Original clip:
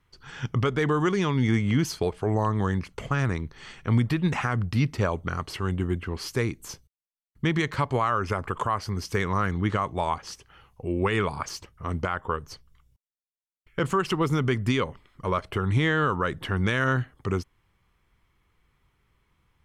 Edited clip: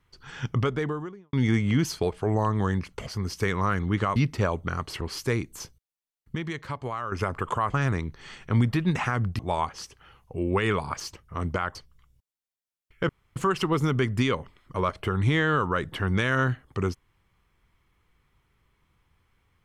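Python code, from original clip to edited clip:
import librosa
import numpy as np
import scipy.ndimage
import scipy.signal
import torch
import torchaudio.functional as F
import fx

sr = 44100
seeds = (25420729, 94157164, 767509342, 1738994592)

y = fx.studio_fade_out(x, sr, start_s=0.51, length_s=0.82)
y = fx.edit(y, sr, fx.swap(start_s=3.07, length_s=1.69, other_s=8.79, other_length_s=1.09),
    fx.cut(start_s=5.61, length_s=0.49),
    fx.clip_gain(start_s=7.44, length_s=0.77, db=-8.0),
    fx.cut(start_s=12.24, length_s=0.27),
    fx.insert_room_tone(at_s=13.85, length_s=0.27), tone=tone)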